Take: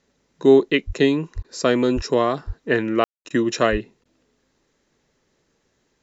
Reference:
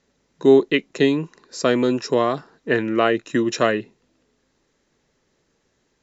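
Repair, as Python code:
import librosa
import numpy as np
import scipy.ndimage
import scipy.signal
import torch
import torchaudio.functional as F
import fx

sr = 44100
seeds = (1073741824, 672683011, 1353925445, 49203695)

y = fx.fix_deplosive(x, sr, at_s=(0.86, 1.35, 1.95, 2.46, 3.71))
y = fx.fix_ambience(y, sr, seeds[0], print_start_s=5.51, print_end_s=6.01, start_s=3.04, end_s=3.25)
y = fx.fix_interpolate(y, sr, at_s=(1.43, 3.29, 4.04), length_ms=12.0)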